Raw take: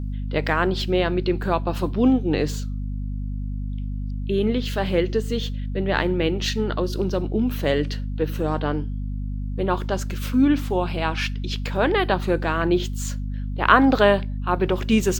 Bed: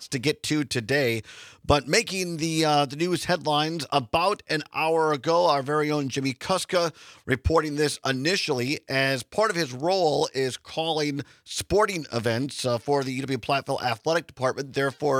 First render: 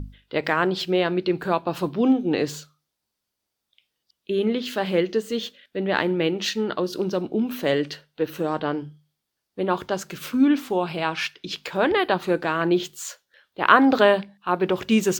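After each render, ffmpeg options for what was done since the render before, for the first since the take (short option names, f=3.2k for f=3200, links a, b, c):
-af "bandreject=f=50:t=h:w=6,bandreject=f=100:t=h:w=6,bandreject=f=150:t=h:w=6,bandreject=f=200:t=h:w=6,bandreject=f=250:t=h:w=6"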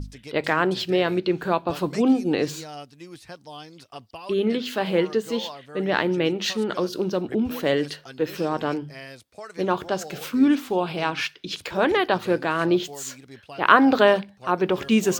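-filter_complex "[1:a]volume=-17dB[a];[0:a][a]amix=inputs=2:normalize=0"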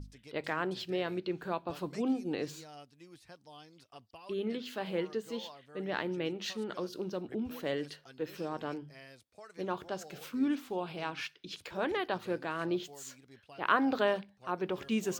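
-af "volume=-12.5dB"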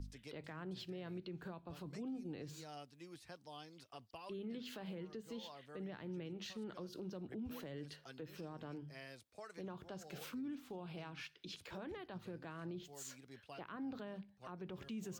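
-filter_complex "[0:a]acrossover=split=190[a][b];[b]acompressor=threshold=-45dB:ratio=10[c];[a][c]amix=inputs=2:normalize=0,alimiter=level_in=14.5dB:limit=-24dB:level=0:latency=1:release=38,volume=-14.5dB"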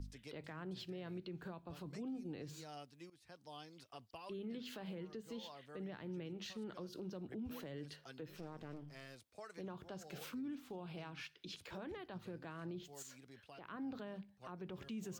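-filter_complex "[0:a]asettb=1/sr,asplit=3[a][b][c];[a]atrim=end=8.284[d];[b]atrim=start=8.28:end=9.27,asetpts=PTS-STARTPTS,afade=t=in:d=0.004:c=qsin,afade=t=out:st=0.986:d=0.004:c=qsin,aeval=exprs='clip(val(0),-1,0.00141)':c=same[e];[c]atrim=start=9.266[f];[d][e]acrossfade=d=0.004:c1=hsin:c2=qsin[g];[g][f]acrossfade=d=0.004:c1=qsin:c2=hsin,asettb=1/sr,asplit=3[h][i][j];[h]atrim=end=13.024[k];[i]atrim=start=13.02:end=13.64,asetpts=PTS-STARTPTS,afade=t=in:d=0.004:c=qsin,afade=t=out:st=0.616:d=0.004:c=qsin,acompressor=threshold=-54dB:ratio=2:attack=3.2:release=140:knee=1:detection=peak[l];[j]atrim=start=13.636[m];[k][l]acrossfade=d=0.004:c1=hsin:c2=qsin[n];[n][m]acrossfade=d=0.004:c1=qsin:c2=hsin,asplit=2[o][p];[o]atrim=end=3.1,asetpts=PTS-STARTPTS,afade=t=out:st=3.096:d=0.004:c=hsin:silence=0.125893[q];[p]atrim=start=3.1,asetpts=PTS-STARTPTS,afade=t=in:d=0.4:silence=0.125893[r];[q][r]concat=n=2:v=0:a=1"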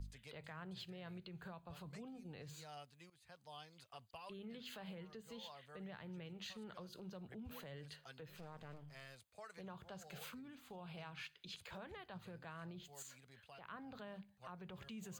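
-af "equalizer=f=310:t=o:w=0.84:g=-13.5,bandreject=f=5.5k:w=5.4"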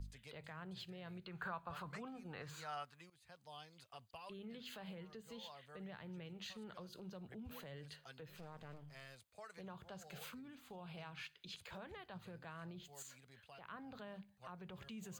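-filter_complex "[0:a]asplit=3[a][b][c];[a]afade=t=out:st=1.26:d=0.02[d];[b]equalizer=f=1.3k:w=0.94:g=14.5,afade=t=in:st=1.26:d=0.02,afade=t=out:st=3:d=0.02[e];[c]afade=t=in:st=3:d=0.02[f];[d][e][f]amix=inputs=3:normalize=0"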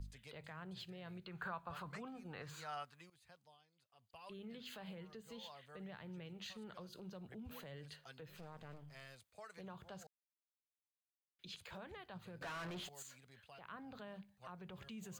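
-filter_complex "[0:a]asettb=1/sr,asplit=3[a][b][c];[a]atrim=end=12.414[d];[b]atrim=start=12.41:end=12.89,asetpts=PTS-STARTPTS,afade=t=in:d=0.004:c=qsin,afade=t=out:st=0.476:d=0.004:c=qsin,asplit=2[e][f];[f]highpass=f=720:p=1,volume=30dB,asoftclip=type=tanh:threshold=-39dB[g];[e][g]amix=inputs=2:normalize=0,lowpass=f=4k:p=1,volume=-6dB[h];[c]atrim=start=12.886[i];[d][h]acrossfade=d=0.004:c1=hsin:c2=qsin[j];[j][i]acrossfade=d=0.004:c1=qsin:c2=hsin,asplit=5[k][l][m][n][o];[k]atrim=end=3.58,asetpts=PTS-STARTPTS,afade=t=out:st=3.19:d=0.39:silence=0.149624[p];[l]atrim=start=3.58:end=3.95,asetpts=PTS-STARTPTS,volume=-16.5dB[q];[m]atrim=start=3.95:end=10.07,asetpts=PTS-STARTPTS,afade=t=in:d=0.39:silence=0.149624,afade=t=out:st=6.116:d=0.004:c=hsin[r];[n]atrim=start=10.07:end=11.39,asetpts=PTS-STARTPTS,volume=0[s];[o]atrim=start=11.39,asetpts=PTS-STARTPTS,afade=t=in:d=0.004:c=hsin[t];[p][q][r][s][t]concat=n=5:v=0:a=1"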